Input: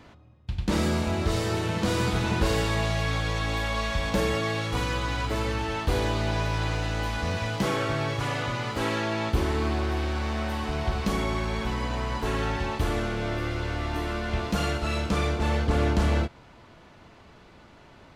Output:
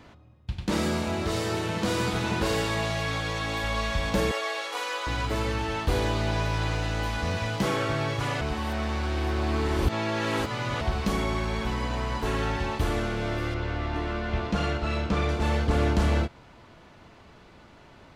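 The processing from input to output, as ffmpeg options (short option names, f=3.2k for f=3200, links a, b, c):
-filter_complex "[0:a]asettb=1/sr,asplit=3[a][b][c];[a]atrim=end=0.524[d];[b]atrim=start=0.52:end=3.64,asetpts=PTS-STARTPTS,afade=t=in:d=0.004:c=qsin,afade=t=out:st=3.116:d=0.004:c=qsin,highpass=f=130:p=1[e];[c]atrim=start=3.636[f];[d][e]acrossfade=d=0.004:c1=hsin:c2=qsin[g];[g][f]acrossfade=d=0.004:c1=qsin:c2=hsin,asettb=1/sr,asplit=3[h][i][j];[h]atrim=end=4.314[k];[i]atrim=start=4.31:end=5.07,asetpts=PTS-STARTPTS,afade=t=in:d=0.004:c=qsin,afade=t=out:st=0.756:d=0.004:c=qsin,highpass=f=480:w=0.5412,highpass=f=480:w=1.3066[l];[j]atrim=start=5.066[m];[k][l]acrossfade=d=0.004:c1=hsin:c2=qsin[n];[n][m]acrossfade=d=0.004:c1=qsin:c2=hsin,asettb=1/sr,asplit=3[o][p][q];[o]atrim=end=13.544[r];[p]atrim=start=13.54:end=15.29,asetpts=PTS-STARTPTS,afade=t=in:d=0.004:c=qsin,afade=t=out:st=1.746:d=0.004:c=qsin,adynamicsmooth=sensitivity=1.5:basefreq=4.7k[s];[q]atrim=start=15.286[t];[r][s]acrossfade=d=0.004:c1=hsin:c2=qsin[u];[u][t]acrossfade=d=0.004:c1=qsin:c2=hsin,asplit=3[v][w][x];[v]atrim=end=8.412[y];[w]atrim=start=8.408:end=10.812,asetpts=PTS-STARTPTS,areverse[z];[x]atrim=start=10.808[aa];[y][z]acrossfade=d=0.004:c1=hsin:c2=hsin[ab];[ab][aa]acrossfade=d=0.004:c1=hsin:c2=hsin"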